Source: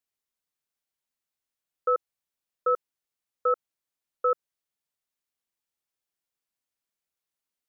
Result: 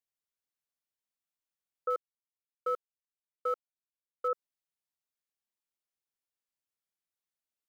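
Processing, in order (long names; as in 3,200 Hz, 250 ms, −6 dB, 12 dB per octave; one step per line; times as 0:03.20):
0:01.90–0:04.28: mu-law and A-law mismatch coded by A
level −7 dB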